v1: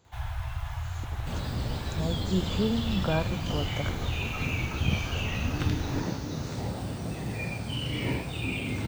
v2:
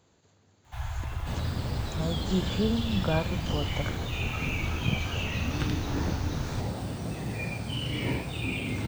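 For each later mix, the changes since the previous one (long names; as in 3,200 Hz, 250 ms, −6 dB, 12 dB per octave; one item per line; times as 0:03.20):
first sound: entry +0.60 s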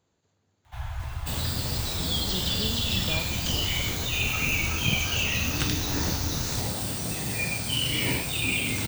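speech −8.5 dB
second sound: remove low-pass filter 1,100 Hz 6 dB per octave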